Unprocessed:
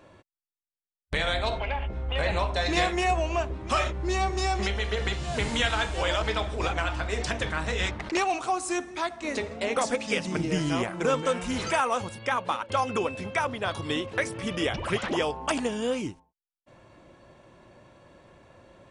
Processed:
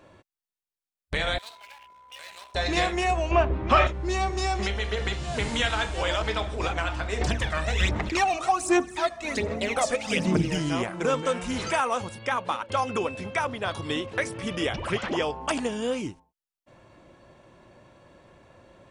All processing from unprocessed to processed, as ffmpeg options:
-filter_complex "[0:a]asettb=1/sr,asplit=3[a][b][c];[a]atrim=end=1.384[d];[b]atrim=start=1.38:end=2.55,asetpts=PTS-STARTPTS,afade=t=in:d=0.004:c=qsin,afade=t=out:st=1.166:d=0.004:c=qsin,aeval=exprs='if(lt(val(0),0),0.251*val(0),val(0))':c=same,aderivative,aeval=exprs='val(0)+0.00316*sin(2*PI*1000*n/s)':c=same[e];[c]atrim=start=2.546[f];[d][e]acrossfade=d=0.004:c1=hsin:c2=qsin[g];[g][f]acrossfade=d=0.004:c1=qsin:c2=hsin,asettb=1/sr,asplit=3[h][i][j];[h]atrim=end=3.314[k];[i]atrim=start=3.31:end=3.87,asetpts=PTS-STARTPTS,afade=t=in:d=0.004:c=qsin,afade=t=out:st=0.556:d=0.004:c=qsin,lowpass=2.8k,acontrast=80[l];[j]atrim=start=3.866[m];[k][l]acrossfade=d=0.004:c1=hsin:c2=qsin[n];[n][m]acrossfade=d=0.004:c1=qsin:c2=hsin,asettb=1/sr,asplit=3[o][p][q];[o]atrim=end=7.214[r];[p]atrim=start=7.21:end=10.57,asetpts=PTS-STARTPTS,afade=t=in:d=0.004:c=qsin,afade=t=out:st=3.356:d=0.004:c=qsin,aphaser=in_gain=1:out_gain=1:delay=1.7:decay=0.63:speed=1.3:type=sinusoidal,aecho=1:1:278:0.133,atrim=end_sample=148176[s];[q]atrim=start=10.566[t];[r][s]acrossfade=d=0.004:c1=hsin:c2=qsin[u];[u][t]acrossfade=d=0.004:c1=qsin:c2=hsin,asettb=1/sr,asplit=3[v][w][x];[v]atrim=end=14.924[y];[w]atrim=start=14.92:end=15.41,asetpts=PTS-STARTPTS,afade=t=in:d=0.004:c=qsin,afade=t=out:st=0.486:d=0.004:c=qsin,lowpass=7.2k,bandreject=f=3.8k:w=20[z];[x]atrim=start=15.406[aa];[y][z]acrossfade=d=0.004:c1=hsin:c2=qsin[ab];[ab][aa]acrossfade=d=0.004:c1=qsin:c2=hsin"

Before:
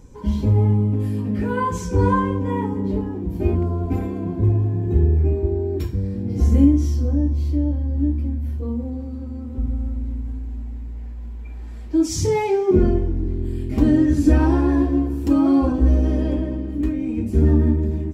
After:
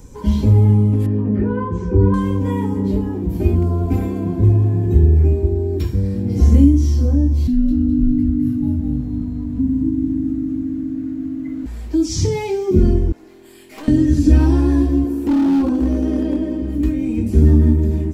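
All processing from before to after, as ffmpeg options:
-filter_complex "[0:a]asettb=1/sr,asplit=3[a][b][c];[a]atrim=end=1.064[d];[b]atrim=start=1.06:end=2.14,asetpts=PTS-STARTPTS,afade=t=in:d=0.004:c=qsin,afade=t=out:st=1.076:d=0.004:c=qsin,lowpass=1.4k,equalizer=f=370:t=o:w=0.27:g=10[e];[c]atrim=start=2.136[f];[d][e]acrossfade=d=0.004:c1=hsin:c2=qsin[g];[g][f]acrossfade=d=0.004:c1=qsin:c2=hsin,asettb=1/sr,asplit=3[h][i][j];[h]atrim=end=7.474[k];[i]atrim=start=7.47:end=11.66,asetpts=PTS-STARTPTS,afade=t=in:d=0.004:c=qsin,afade=t=out:st=4.186:d=0.004:c=qsin,highshelf=f=4.4k:g=-8.5,asplit=6[l][m][n][o][p][q];[m]adelay=210,afreqshift=-50,volume=-5.5dB[r];[n]adelay=420,afreqshift=-100,volume=-13dB[s];[o]adelay=630,afreqshift=-150,volume=-20.6dB[t];[p]adelay=840,afreqshift=-200,volume=-28.1dB[u];[q]adelay=1050,afreqshift=-250,volume=-35.6dB[v];[l][r][s][t][u][v]amix=inputs=6:normalize=0,atrim=end_sample=184779,afreqshift=-320[w];[j]atrim=start=11.656[x];[k][w]acrossfade=d=0.004:c1=hsin:c2=qsin[y];[y][x]acrossfade=d=0.004:c1=qsin:c2=hsin,asettb=1/sr,asplit=3[z][aa][ab];[z]atrim=end=13.124[ac];[aa]atrim=start=13.12:end=13.88,asetpts=PTS-STARTPTS,afade=t=in:d=0.004:c=qsin,afade=t=out:st=0.756:d=0.004:c=qsin,highpass=820,aeval=exprs='(tanh(50.1*val(0)+0.5)-tanh(0.5))/50.1':c=same[ad];[ab]atrim=start=13.876[ae];[ac][ad]acrossfade=d=0.004:c1=hsin:c2=qsin[af];[af][ae]acrossfade=d=0.004:c1=qsin:c2=hsin,asettb=1/sr,asplit=3[ag][ah][ai];[ag]atrim=end=15.044[aj];[ah]atrim=start=15.04:end=16.62,asetpts=PTS-STARTPTS,afade=t=in:d=0.004:c=qsin,afade=t=out:st=1.576:d=0.004:c=qsin,acrossover=split=2700[ak][al];[al]acompressor=threshold=-58dB:ratio=4:attack=1:release=60[am];[ak][am]amix=inputs=2:normalize=0,lowshelf=f=190:t=q:w=1.5:g=-10.5,asoftclip=type=hard:threshold=-14.5dB[an];[ai]atrim=start=16.616[ao];[aj][an]acrossfade=d=0.004:c1=hsin:c2=qsin[ap];[ap][ao]acrossfade=d=0.004:c1=qsin:c2=hsin,acrossover=split=5500[aq][ar];[ar]acompressor=threshold=-58dB:ratio=4:attack=1:release=60[as];[aq][as]amix=inputs=2:normalize=0,highshelf=f=6.5k:g=9,acrossover=split=310|3000[at][au][av];[au]acompressor=threshold=-31dB:ratio=6[aw];[at][aw][av]amix=inputs=3:normalize=0,volume=5dB"

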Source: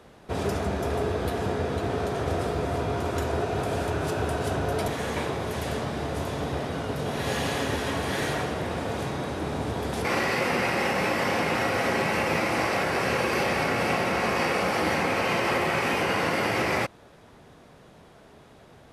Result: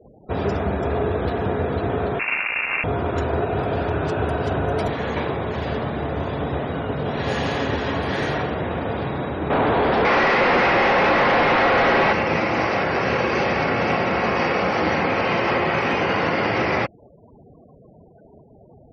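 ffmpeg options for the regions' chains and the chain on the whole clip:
-filter_complex "[0:a]asettb=1/sr,asplit=3[a][b][c];[a]atrim=end=2.194[d];[b]atrim=start=2.19:end=2.84,asetpts=PTS-STARTPTS,afade=t=in:d=0.004:c=qsin,afade=t=out:st=0.646:d=0.004:c=qsin,acrusher=bits=5:dc=4:mix=0:aa=0.000001,lowpass=f=2.4k:t=q:w=0.5098,lowpass=f=2.4k:t=q:w=0.6013,lowpass=f=2.4k:t=q:w=0.9,lowpass=f=2.4k:t=q:w=2.563,afreqshift=-2800[e];[c]atrim=start=2.836[f];[d][e]acrossfade=d=0.004:c1=hsin:c2=qsin[g];[g][f]acrossfade=d=0.004:c1=qsin:c2=hsin,asettb=1/sr,asplit=3[h][i][j];[h]atrim=end=9.504[k];[i]atrim=start=9.5:end=12.13,asetpts=PTS-STARTPTS,afade=t=in:d=0.004:c=qsin,afade=t=out:st=2.626:d=0.004:c=qsin,lowpass=5.2k,highshelf=f=2.9k:g=-5,asplit=2[l][m];[m]highpass=f=720:p=1,volume=23dB,asoftclip=type=tanh:threshold=-14.5dB[n];[l][n]amix=inputs=2:normalize=0,lowpass=f=2.7k:p=1,volume=-6dB[o];[j]atrim=start=12.126[p];[k][o]acrossfade=d=0.004:c1=hsin:c2=qsin[q];[q][p]acrossfade=d=0.004:c1=qsin:c2=hsin,lowpass=f=3.3k:p=1,afftfilt=real='re*gte(hypot(re,im),0.00708)':imag='im*gte(hypot(re,im),0.00708)':win_size=1024:overlap=0.75,volume=5dB"

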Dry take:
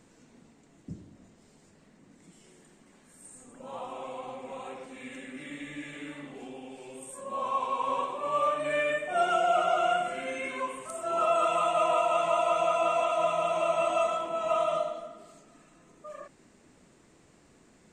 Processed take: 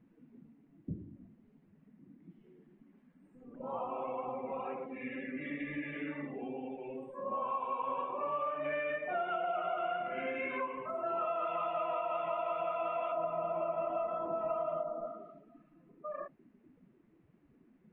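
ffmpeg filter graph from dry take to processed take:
-filter_complex "[0:a]asettb=1/sr,asplit=3[a][b][c];[a]atrim=end=13.124[d];[b]atrim=start=13.12:end=15.06,asetpts=PTS-STARTPTS,afade=t=in:d=0.004:c=qsin,afade=t=out:st=1.936:d=0.004:c=qsin,lowpass=f=2.9k:p=1,tiltshelf=f=1.1k:g=5[e];[c]atrim=start=15.056[f];[d][e]acrossfade=d=0.004:c1=hsin:c2=qsin[g];[g][f]acrossfade=d=0.004:c1=qsin:c2=hsin,afftdn=nr=17:nf=-48,lowpass=f=2.7k:w=0.5412,lowpass=f=2.7k:w=1.3066,acompressor=threshold=-36dB:ratio=5,volume=2.5dB"

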